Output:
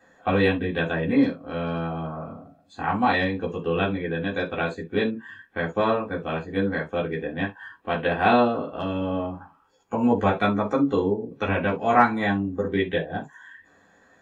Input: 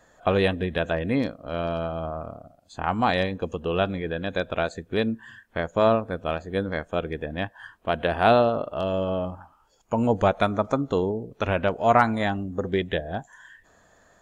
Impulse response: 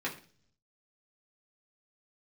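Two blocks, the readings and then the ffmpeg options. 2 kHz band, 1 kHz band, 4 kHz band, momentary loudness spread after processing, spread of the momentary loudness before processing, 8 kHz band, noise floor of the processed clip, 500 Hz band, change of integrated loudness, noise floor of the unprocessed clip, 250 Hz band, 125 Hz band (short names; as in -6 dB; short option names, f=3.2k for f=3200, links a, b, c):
+3.0 dB, +0.5 dB, -1.0 dB, 11 LU, 12 LU, n/a, -59 dBFS, -1.0 dB, +0.5 dB, -60 dBFS, +3.5 dB, -0.5 dB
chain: -filter_complex "[1:a]atrim=start_sample=2205,atrim=end_sample=3528[a];[0:a][a]afir=irnorm=-1:irlink=0,volume=-3.5dB"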